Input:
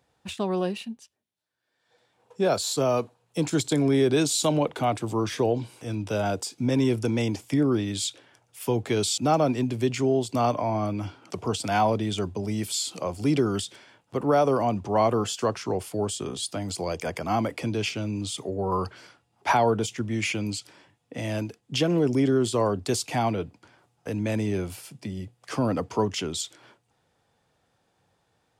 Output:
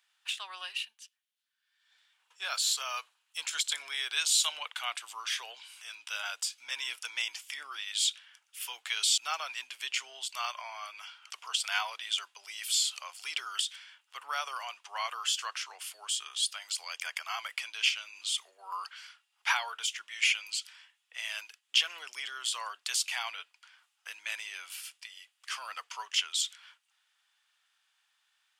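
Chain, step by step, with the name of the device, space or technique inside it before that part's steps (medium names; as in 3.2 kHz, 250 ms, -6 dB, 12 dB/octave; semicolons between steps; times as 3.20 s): headphones lying on a table (high-pass 1.3 kHz 24 dB/octave; peaking EQ 3 kHz +6.5 dB 0.47 oct)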